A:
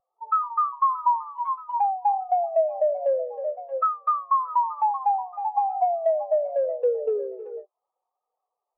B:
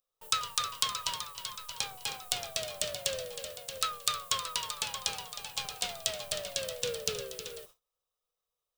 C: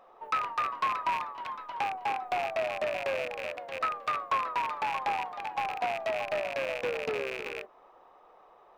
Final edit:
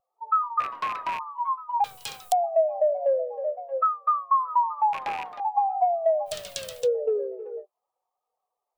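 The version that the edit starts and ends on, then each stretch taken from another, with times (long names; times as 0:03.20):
A
0:00.60–0:01.19: punch in from C
0:01.84–0:02.32: punch in from B
0:04.93–0:05.40: punch in from C
0:06.30–0:06.83: punch in from B, crossfade 0.10 s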